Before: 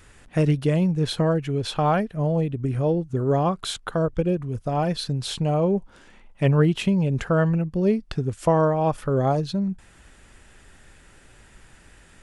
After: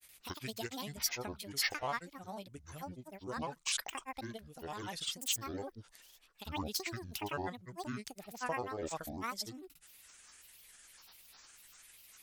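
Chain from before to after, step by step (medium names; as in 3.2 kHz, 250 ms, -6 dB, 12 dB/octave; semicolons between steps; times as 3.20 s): pre-emphasis filter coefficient 0.97; granulator 100 ms, pitch spread up and down by 12 st; wow and flutter 22 cents; trim +4 dB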